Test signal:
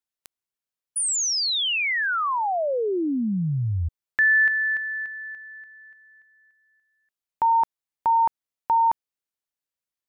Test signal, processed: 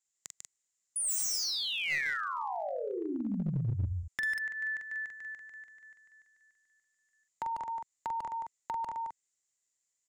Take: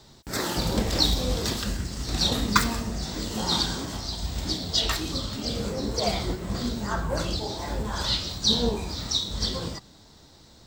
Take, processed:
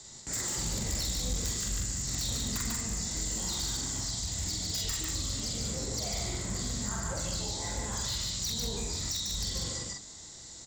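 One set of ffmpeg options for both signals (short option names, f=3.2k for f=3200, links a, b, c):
-filter_complex "[0:a]acompressor=threshold=-28dB:ratio=5:attack=56:release=170:knee=6:detection=peak,lowpass=f=7.2k:t=q:w=8.9,asplit=2[a][b];[b]adelay=44,volume=-3.5dB[c];[a][c]amix=inputs=2:normalize=0,aeval=exprs='0.158*(abs(mod(val(0)/0.158+3,4)-2)-1)':c=same,highshelf=f=4.2k:g=6.5,aecho=1:1:146:0.631,acrossover=split=170[d][e];[e]acompressor=threshold=-28dB:ratio=2.5:attack=1.7:release=240:knee=2.83:detection=peak[f];[d][f]amix=inputs=2:normalize=0,equalizer=f=2k:t=o:w=0.2:g=8.5,aeval=exprs='clip(val(0),-1,0.0708)':c=same,volume=-5.5dB"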